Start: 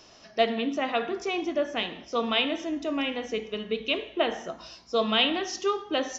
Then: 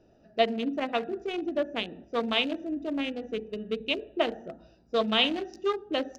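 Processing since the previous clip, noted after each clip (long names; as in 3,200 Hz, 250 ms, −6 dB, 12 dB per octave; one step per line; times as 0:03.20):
adaptive Wiener filter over 41 samples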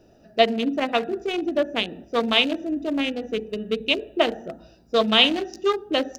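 high-shelf EQ 5,400 Hz +8.5 dB
level +6 dB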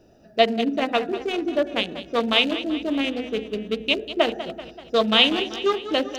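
feedback echo with a swinging delay time 192 ms, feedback 57%, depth 102 cents, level −13 dB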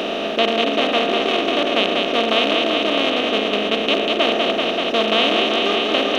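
compressor on every frequency bin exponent 0.2
level −6 dB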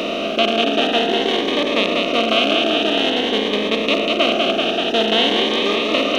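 phaser whose notches keep moving one way rising 0.5 Hz
level +2.5 dB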